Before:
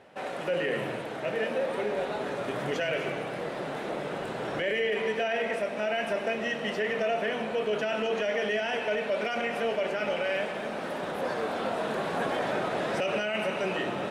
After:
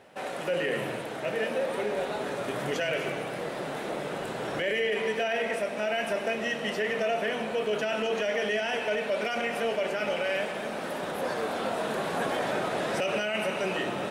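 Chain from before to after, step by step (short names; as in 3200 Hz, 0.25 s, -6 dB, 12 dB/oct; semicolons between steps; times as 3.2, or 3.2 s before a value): high shelf 6800 Hz +10 dB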